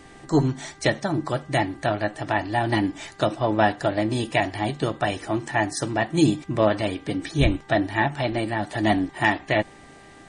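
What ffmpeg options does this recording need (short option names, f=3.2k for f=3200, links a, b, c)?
-af "bandreject=f=395.6:t=h:w=4,bandreject=f=791.2:t=h:w=4,bandreject=f=1.1868k:t=h:w=4,bandreject=f=1.5824k:t=h:w=4,bandreject=f=1.978k:t=h:w=4"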